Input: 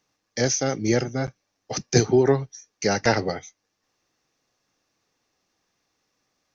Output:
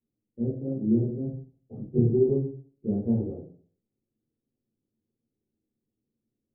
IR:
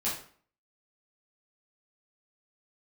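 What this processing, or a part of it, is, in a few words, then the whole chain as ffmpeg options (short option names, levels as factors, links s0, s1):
next room: -filter_complex "[0:a]lowpass=f=380:w=0.5412,lowpass=f=380:w=1.3066[s0];[1:a]atrim=start_sample=2205[s1];[s0][s1]afir=irnorm=-1:irlink=0,volume=0.376"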